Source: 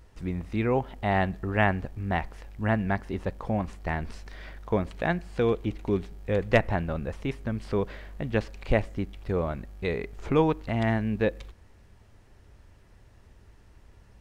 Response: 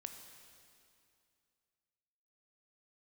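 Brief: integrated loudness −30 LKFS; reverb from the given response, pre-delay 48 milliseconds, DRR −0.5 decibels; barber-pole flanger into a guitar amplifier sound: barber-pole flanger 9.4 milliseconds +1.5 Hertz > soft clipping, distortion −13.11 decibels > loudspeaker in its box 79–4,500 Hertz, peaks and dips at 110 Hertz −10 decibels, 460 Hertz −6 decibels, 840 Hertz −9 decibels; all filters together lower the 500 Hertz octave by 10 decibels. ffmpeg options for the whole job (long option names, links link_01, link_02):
-filter_complex "[0:a]equalizer=frequency=500:width_type=o:gain=-8,asplit=2[link_01][link_02];[1:a]atrim=start_sample=2205,adelay=48[link_03];[link_02][link_03]afir=irnorm=-1:irlink=0,volume=4.5dB[link_04];[link_01][link_04]amix=inputs=2:normalize=0,asplit=2[link_05][link_06];[link_06]adelay=9.4,afreqshift=1.5[link_07];[link_05][link_07]amix=inputs=2:normalize=1,asoftclip=threshold=-23dB,highpass=79,equalizer=frequency=110:width_type=q:width=4:gain=-10,equalizer=frequency=460:width_type=q:width=4:gain=-6,equalizer=frequency=840:width_type=q:width=4:gain=-9,lowpass=frequency=4500:width=0.5412,lowpass=frequency=4500:width=1.3066,volume=5.5dB"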